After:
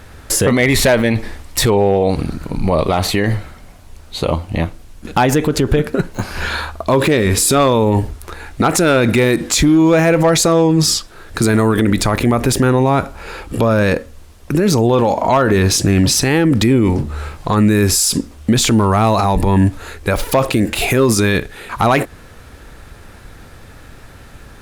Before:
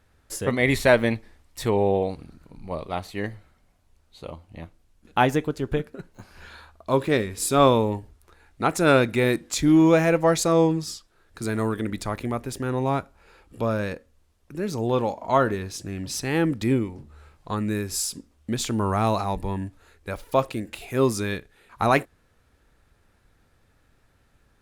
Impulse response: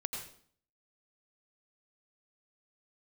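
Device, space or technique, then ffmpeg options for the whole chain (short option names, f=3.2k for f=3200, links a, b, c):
loud club master: -af "acompressor=threshold=-22dB:ratio=2.5,asoftclip=type=hard:threshold=-17dB,alimiter=level_in=28.5dB:limit=-1dB:release=50:level=0:latency=1,volume=-4.5dB"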